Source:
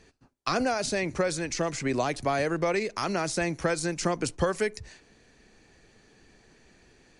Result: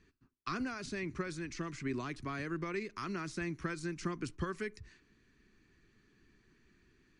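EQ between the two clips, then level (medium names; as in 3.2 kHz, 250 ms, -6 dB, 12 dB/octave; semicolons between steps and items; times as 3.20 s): low-pass 2.3 kHz 6 dB/octave; high-order bell 640 Hz -14.5 dB 1.1 oct; -7.5 dB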